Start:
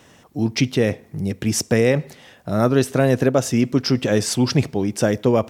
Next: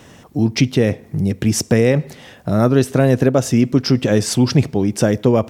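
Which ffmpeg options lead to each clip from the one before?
-filter_complex "[0:a]lowshelf=f=370:g=5,asplit=2[s0][s1];[s1]acompressor=threshold=0.0708:ratio=6,volume=1.19[s2];[s0][s2]amix=inputs=2:normalize=0,volume=0.794"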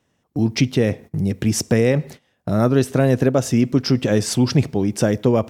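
-af "agate=range=0.0794:threshold=0.0224:ratio=16:detection=peak,volume=0.75"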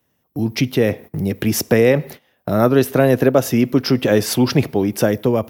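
-filter_complex "[0:a]acrossover=split=280|4500[s0][s1][s2];[s1]dynaudnorm=f=210:g=7:m=3.76[s3];[s0][s3][s2]amix=inputs=3:normalize=0,aexciter=amount=6.5:drive=6.3:freq=11000,volume=0.794"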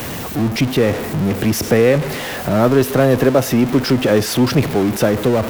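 -af "aeval=exprs='val(0)+0.5*0.15*sgn(val(0))':c=same,highshelf=f=3800:g=-6,volume=0.891"

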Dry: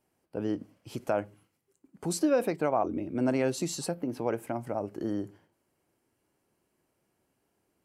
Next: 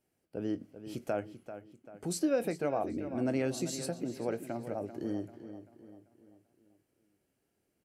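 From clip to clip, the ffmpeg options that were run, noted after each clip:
-filter_complex "[0:a]equalizer=f=990:t=o:w=0.59:g=-8.5,asplit=2[s0][s1];[s1]adelay=22,volume=0.2[s2];[s0][s2]amix=inputs=2:normalize=0,asplit=2[s3][s4];[s4]adelay=390,lowpass=f=4400:p=1,volume=0.266,asplit=2[s5][s6];[s6]adelay=390,lowpass=f=4400:p=1,volume=0.45,asplit=2[s7][s8];[s8]adelay=390,lowpass=f=4400:p=1,volume=0.45,asplit=2[s9][s10];[s10]adelay=390,lowpass=f=4400:p=1,volume=0.45,asplit=2[s11][s12];[s12]adelay=390,lowpass=f=4400:p=1,volume=0.45[s13];[s5][s7][s9][s11][s13]amix=inputs=5:normalize=0[s14];[s3][s14]amix=inputs=2:normalize=0,volume=0.668"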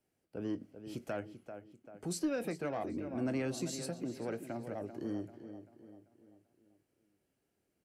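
-filter_complex "[0:a]highshelf=f=9900:g=-4,acrossover=split=350|860[s0][s1][s2];[s1]asoftclip=type=tanh:threshold=0.0119[s3];[s0][s3][s2]amix=inputs=3:normalize=0,volume=0.794"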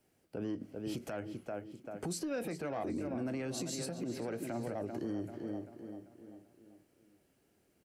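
-af "acompressor=threshold=0.0112:ratio=10,alimiter=level_in=5.01:limit=0.0631:level=0:latency=1:release=91,volume=0.2,aecho=1:1:842:0.075,volume=2.66"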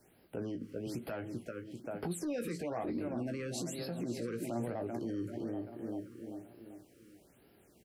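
-filter_complex "[0:a]alimiter=level_in=5.01:limit=0.0631:level=0:latency=1:release=470,volume=0.2,asplit=2[s0][s1];[s1]adelay=17,volume=0.398[s2];[s0][s2]amix=inputs=2:normalize=0,afftfilt=real='re*(1-between(b*sr/1024,730*pow(7700/730,0.5+0.5*sin(2*PI*1.1*pts/sr))/1.41,730*pow(7700/730,0.5+0.5*sin(2*PI*1.1*pts/sr))*1.41))':imag='im*(1-between(b*sr/1024,730*pow(7700/730,0.5+0.5*sin(2*PI*1.1*pts/sr))/1.41,730*pow(7700/730,0.5+0.5*sin(2*PI*1.1*pts/sr))*1.41))':win_size=1024:overlap=0.75,volume=2.51"

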